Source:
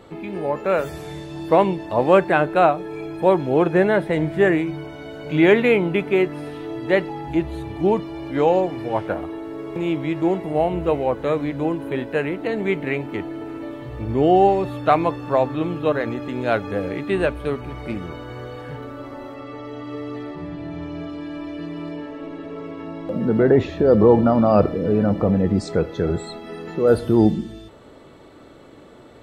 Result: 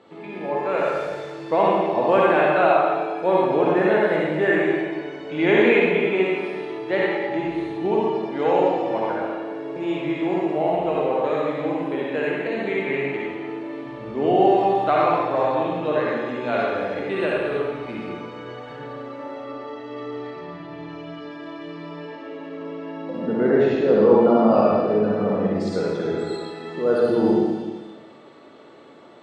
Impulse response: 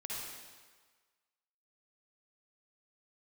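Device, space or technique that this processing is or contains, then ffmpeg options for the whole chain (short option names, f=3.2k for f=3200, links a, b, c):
supermarket ceiling speaker: -filter_complex "[0:a]highpass=220,lowpass=5.7k[a];[1:a]atrim=start_sample=2205[b];[a][b]afir=irnorm=-1:irlink=0"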